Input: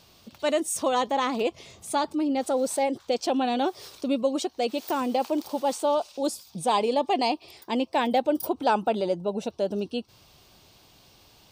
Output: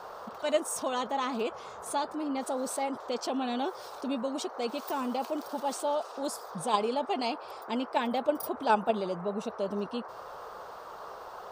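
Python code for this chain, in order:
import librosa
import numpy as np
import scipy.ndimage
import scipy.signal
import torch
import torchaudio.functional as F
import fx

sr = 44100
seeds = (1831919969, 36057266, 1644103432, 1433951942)

p1 = x + 0.33 * np.pad(x, (int(4.7 * sr / 1000.0), 0))[:len(x)]
p2 = fx.level_steps(p1, sr, step_db=20)
p3 = p1 + (p2 * 10.0 ** (0.5 / 20.0))
p4 = fx.dmg_noise_band(p3, sr, seeds[0], low_hz=420.0, high_hz=1300.0, level_db=-36.0)
y = p4 * 10.0 ** (-8.0 / 20.0)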